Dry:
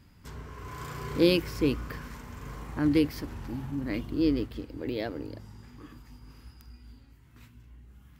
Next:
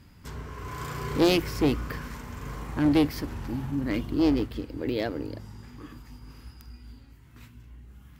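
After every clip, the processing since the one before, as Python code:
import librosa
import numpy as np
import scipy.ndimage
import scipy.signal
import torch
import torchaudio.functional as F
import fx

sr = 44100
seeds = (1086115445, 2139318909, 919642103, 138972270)

y = fx.clip_asym(x, sr, top_db=-23.5, bottom_db=-16.0)
y = y * 10.0 ** (4.0 / 20.0)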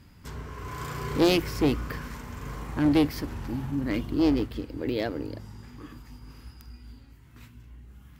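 y = x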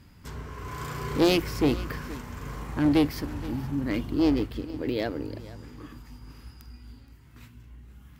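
y = x + 10.0 ** (-18.0 / 20.0) * np.pad(x, (int(472 * sr / 1000.0), 0))[:len(x)]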